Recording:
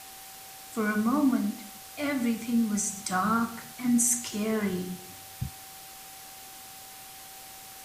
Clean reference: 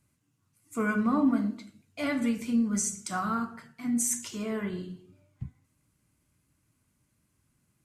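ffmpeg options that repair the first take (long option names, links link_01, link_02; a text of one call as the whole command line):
ffmpeg -i in.wav -af "bandreject=frequency=770:width=30,afwtdn=0.0056,asetnsamples=nb_out_samples=441:pad=0,asendcmd='2.96 volume volume -4dB',volume=0dB" out.wav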